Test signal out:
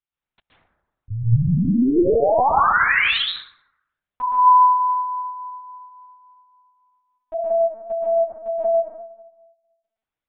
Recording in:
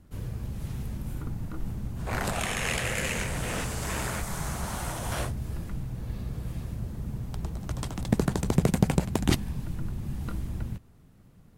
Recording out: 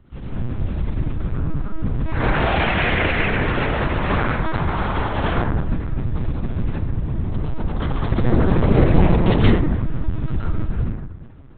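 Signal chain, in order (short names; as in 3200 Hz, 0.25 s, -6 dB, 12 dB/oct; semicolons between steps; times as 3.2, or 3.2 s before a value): plate-style reverb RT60 1.1 s, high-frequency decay 0.35×, pre-delay 0.11 s, DRR -7.5 dB; LPC vocoder at 8 kHz pitch kept; gain +3 dB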